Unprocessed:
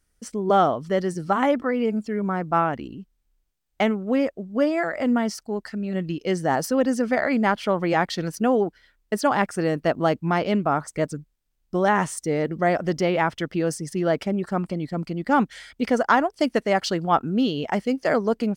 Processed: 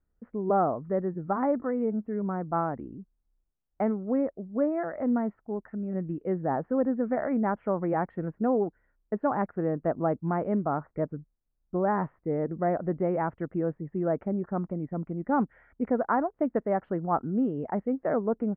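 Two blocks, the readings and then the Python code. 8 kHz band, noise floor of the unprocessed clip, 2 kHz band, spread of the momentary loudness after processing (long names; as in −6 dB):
below −40 dB, −70 dBFS, −14.0 dB, 7 LU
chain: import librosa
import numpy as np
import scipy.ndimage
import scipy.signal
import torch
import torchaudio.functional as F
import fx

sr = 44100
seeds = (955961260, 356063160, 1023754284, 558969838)

y = scipy.signal.sosfilt(scipy.signal.bessel(8, 1000.0, 'lowpass', norm='mag', fs=sr, output='sos'), x)
y = F.gain(torch.from_numpy(y), -4.5).numpy()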